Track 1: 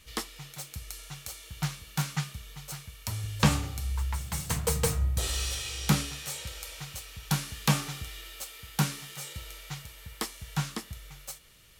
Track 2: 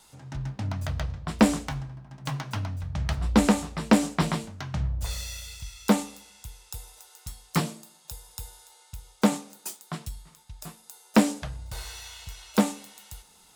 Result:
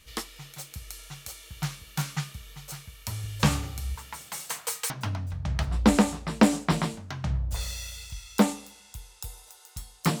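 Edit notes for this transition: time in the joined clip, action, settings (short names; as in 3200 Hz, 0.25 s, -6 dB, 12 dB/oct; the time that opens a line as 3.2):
track 1
3.94–4.9 HPF 160 Hz -> 1400 Hz
4.9 switch to track 2 from 2.4 s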